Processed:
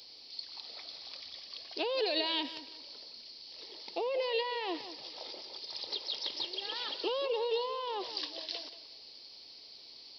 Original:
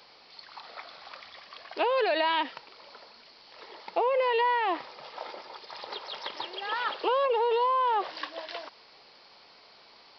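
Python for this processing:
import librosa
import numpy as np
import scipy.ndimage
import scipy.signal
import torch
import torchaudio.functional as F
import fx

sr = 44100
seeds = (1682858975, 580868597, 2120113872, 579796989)

y = fx.curve_eq(x, sr, hz=(110.0, 170.0, 280.0, 1400.0, 4400.0), db=(0, -9, 0, -18, 7))
y = fx.echo_tape(y, sr, ms=179, feedback_pct=31, wet_db=-12, lp_hz=4200.0, drive_db=19.0, wow_cents=12)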